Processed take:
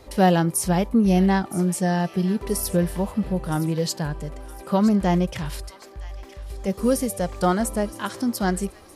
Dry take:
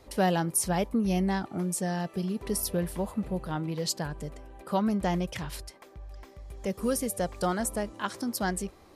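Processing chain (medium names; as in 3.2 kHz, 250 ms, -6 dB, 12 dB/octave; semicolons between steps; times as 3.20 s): harmonic-percussive split percussive -7 dB; feedback echo behind a high-pass 967 ms, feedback 40%, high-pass 1.6 kHz, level -14 dB; trim +9 dB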